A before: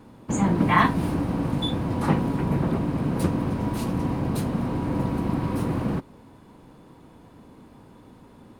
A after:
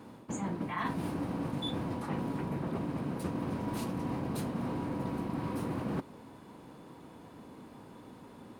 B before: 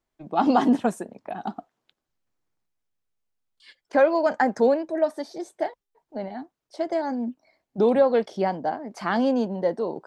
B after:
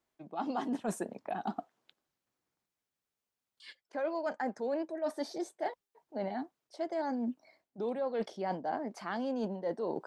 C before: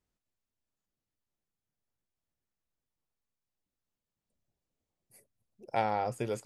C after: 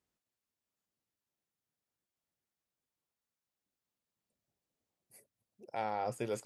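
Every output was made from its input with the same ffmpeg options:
-af "highpass=f=160:p=1,areverse,acompressor=threshold=-31dB:ratio=16,areverse"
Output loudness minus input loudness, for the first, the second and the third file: -11.0, -13.0, -5.5 LU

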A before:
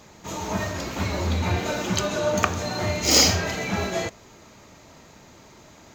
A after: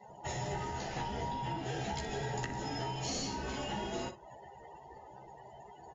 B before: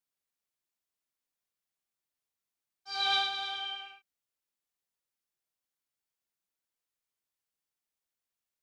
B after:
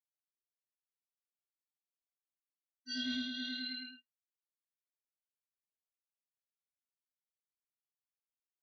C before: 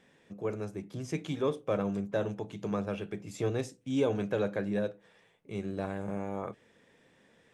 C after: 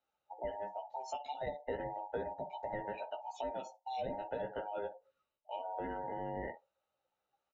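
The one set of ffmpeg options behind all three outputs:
-filter_complex "[0:a]afftfilt=real='real(if(between(b,1,1008),(2*floor((b-1)/48)+1)*48-b,b),0)':imag='imag(if(between(b,1,1008),(2*floor((b-1)/48)+1)*48-b,b),0)*if(between(b,1,1008),-1,1)':win_size=2048:overlap=0.75,asplit=2[a][b];[b]aecho=0:1:15|61:0.668|0.251[c];[a][c]amix=inputs=2:normalize=0,aeval=exprs='0.398*(abs(mod(val(0)/0.398+3,4)-2)-1)':c=same,aresample=16000,aresample=44100,afftdn=nr=24:nf=-45,acrossover=split=280[d][e];[d]alimiter=level_in=9.5dB:limit=-24dB:level=0:latency=1,volume=-9.5dB[f];[e]acompressor=threshold=-36dB:ratio=12[g];[f][g]amix=inputs=2:normalize=0,volume=-1.5dB"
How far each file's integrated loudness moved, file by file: -14.5, -7.5, -7.5 LU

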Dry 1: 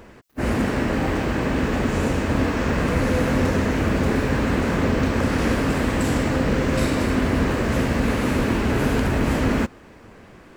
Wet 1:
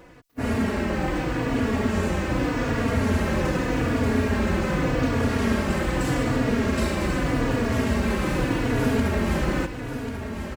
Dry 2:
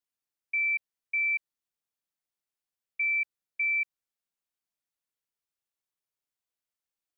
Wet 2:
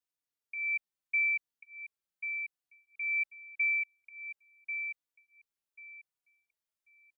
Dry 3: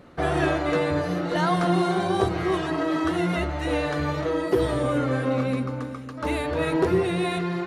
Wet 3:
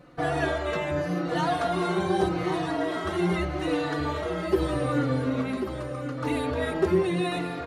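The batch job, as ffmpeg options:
-filter_complex "[0:a]asplit=2[a][b];[b]aecho=0:1:1090|2180|3270:0.376|0.0752|0.015[c];[a][c]amix=inputs=2:normalize=0,asplit=2[d][e];[e]adelay=3.5,afreqshift=-0.83[f];[d][f]amix=inputs=2:normalize=1"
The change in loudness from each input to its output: -2.5, -4.5, -2.5 LU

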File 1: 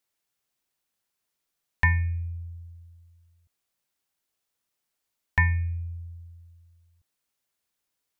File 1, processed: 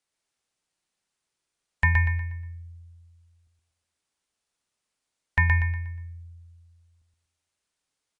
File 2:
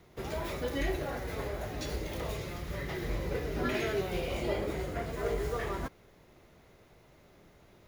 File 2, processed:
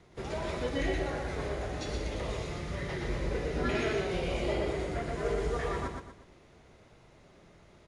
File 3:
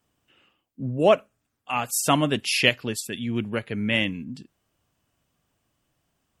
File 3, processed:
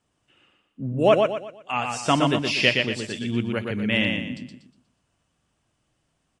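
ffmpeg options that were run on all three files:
-filter_complex "[0:a]acrossover=split=6200[a][b];[b]acompressor=threshold=-50dB:ratio=4:attack=1:release=60[c];[a][c]amix=inputs=2:normalize=0,aecho=1:1:120|240|360|480|600:0.631|0.227|0.0818|0.0294|0.0106" -ar 22050 -c:a aac -b:a 64k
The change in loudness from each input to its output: +2.0, +1.5, +0.5 LU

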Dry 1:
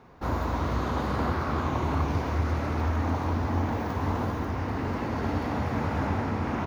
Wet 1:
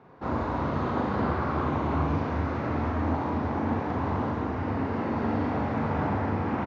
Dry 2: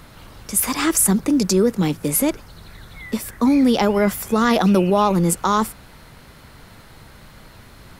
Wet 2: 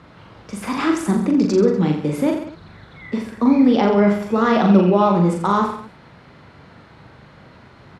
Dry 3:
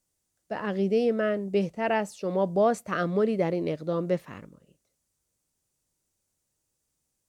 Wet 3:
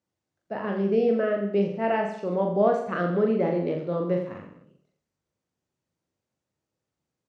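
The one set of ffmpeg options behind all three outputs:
-filter_complex "[0:a]highpass=100,lowpass=5k,highshelf=f=2.9k:g=-10,asplit=2[a][b];[b]aecho=0:1:40|84|132.4|185.6|244.2:0.631|0.398|0.251|0.158|0.1[c];[a][c]amix=inputs=2:normalize=0"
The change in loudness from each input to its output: +0.5, +1.0, +2.0 LU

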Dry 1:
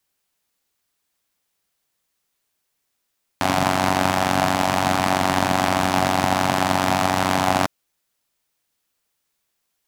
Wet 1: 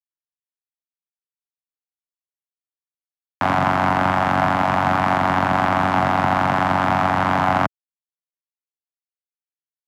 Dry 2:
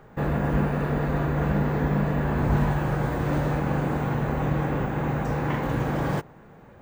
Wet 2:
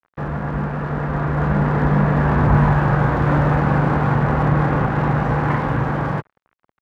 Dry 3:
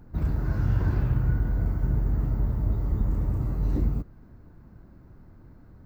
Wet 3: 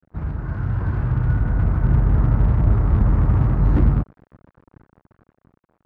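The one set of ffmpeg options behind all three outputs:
-filter_complex "[0:a]acrossover=split=190|250|800[a][b][c][d];[a]acontrast=66[e];[e][b][c][d]amix=inputs=4:normalize=0,lowpass=f=1.8k:p=1,aeval=exprs='sgn(val(0))*max(abs(val(0))-0.0112,0)':c=same,highpass=f=110:p=1,asoftclip=type=tanh:threshold=-13dB,equalizer=f=1.3k:w=0.62:g=11.5,dynaudnorm=f=410:g=7:m=10.5dB,lowshelf=f=180:g=6,volume=-5dB"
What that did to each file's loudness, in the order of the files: +1.5, +7.0, +7.5 LU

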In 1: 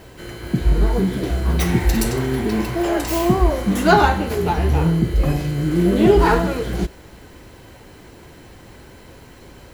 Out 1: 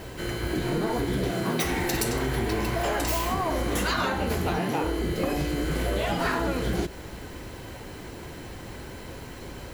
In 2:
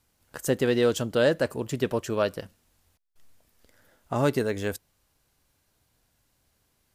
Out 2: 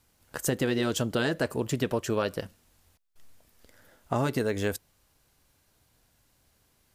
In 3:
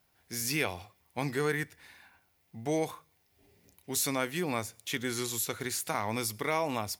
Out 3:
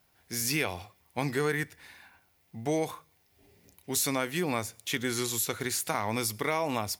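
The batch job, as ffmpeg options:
-af "afftfilt=real='re*lt(hypot(re,im),0.631)':imag='im*lt(hypot(re,im),0.631)':win_size=1024:overlap=0.75,acompressor=threshold=-26dB:ratio=6,volume=3dB"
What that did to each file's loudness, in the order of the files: -8.5, -3.0, +2.0 LU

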